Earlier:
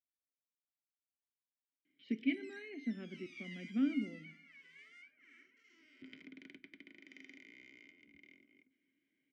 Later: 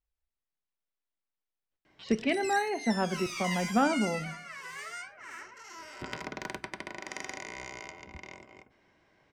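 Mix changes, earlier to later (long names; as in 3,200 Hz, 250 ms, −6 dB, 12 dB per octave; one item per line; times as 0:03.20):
background +4.0 dB
master: remove formant filter i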